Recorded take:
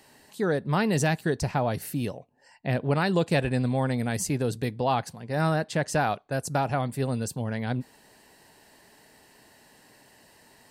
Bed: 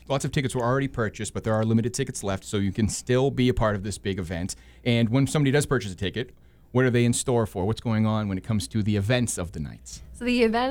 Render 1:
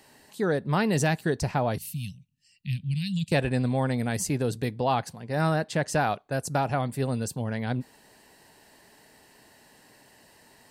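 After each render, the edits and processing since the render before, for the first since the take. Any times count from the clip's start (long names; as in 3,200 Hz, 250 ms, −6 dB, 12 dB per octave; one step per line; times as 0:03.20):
0:01.78–0:03.32: elliptic band-stop filter 180–2,700 Hz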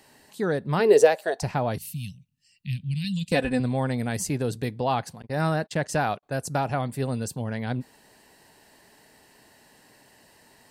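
0:00.79–0:01.42: high-pass with resonance 350 Hz → 760 Hz, resonance Q 9.1
0:03.04–0:03.60: comb filter 4 ms
0:05.22–0:06.23: noise gate −39 dBFS, range −36 dB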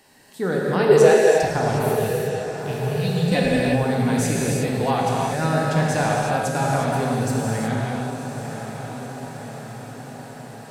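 feedback delay with all-pass diffusion 1,012 ms, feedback 64%, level −10 dB
reverb whose tail is shaped and stops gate 390 ms flat, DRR −3.5 dB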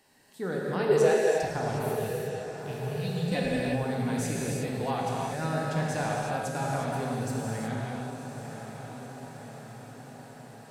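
level −9 dB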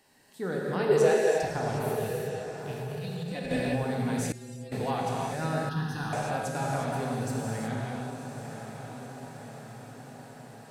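0:02.71–0:03.51: downward compressor, threshold −31 dBFS
0:04.32–0:04.72: stiff-string resonator 120 Hz, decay 0.56 s, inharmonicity 0.008
0:05.69–0:06.13: phaser with its sweep stopped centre 2,200 Hz, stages 6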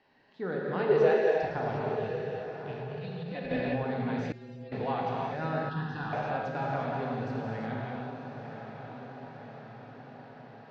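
Bessel low-pass filter 2,700 Hz, order 8
low-shelf EQ 230 Hz −5 dB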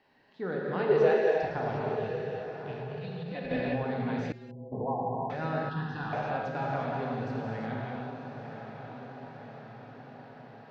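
0:04.51–0:05.30: linear-phase brick-wall low-pass 1,100 Hz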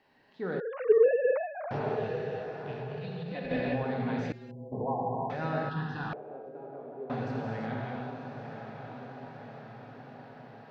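0:00.60–0:01.71: three sine waves on the formant tracks
0:06.13–0:07.10: resonant band-pass 400 Hz, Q 4.1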